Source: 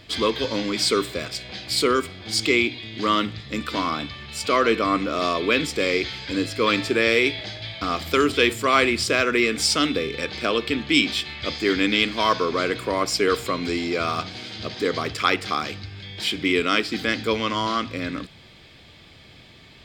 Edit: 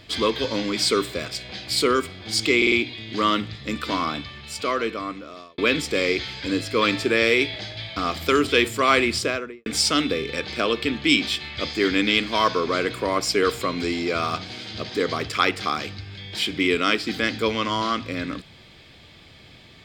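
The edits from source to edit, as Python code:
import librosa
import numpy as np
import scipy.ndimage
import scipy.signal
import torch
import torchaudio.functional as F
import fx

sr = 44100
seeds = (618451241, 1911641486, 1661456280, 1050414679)

y = fx.studio_fade_out(x, sr, start_s=8.97, length_s=0.54)
y = fx.edit(y, sr, fx.stutter(start_s=2.57, slice_s=0.05, count=4),
    fx.fade_out_span(start_s=3.95, length_s=1.48), tone=tone)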